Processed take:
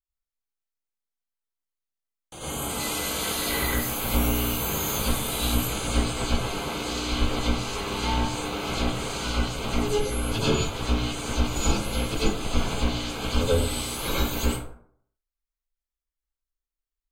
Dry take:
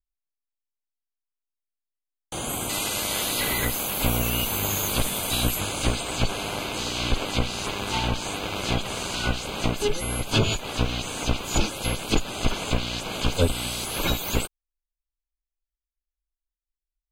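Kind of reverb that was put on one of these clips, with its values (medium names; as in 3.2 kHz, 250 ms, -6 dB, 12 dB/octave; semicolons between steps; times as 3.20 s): plate-style reverb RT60 0.6 s, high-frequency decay 0.5×, pre-delay 80 ms, DRR -9 dB; trim -10 dB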